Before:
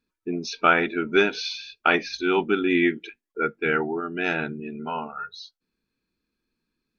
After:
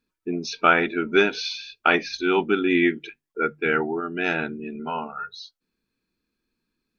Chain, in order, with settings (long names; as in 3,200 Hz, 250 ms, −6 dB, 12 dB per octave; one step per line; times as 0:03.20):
mains-hum notches 50/100/150 Hz
level +1 dB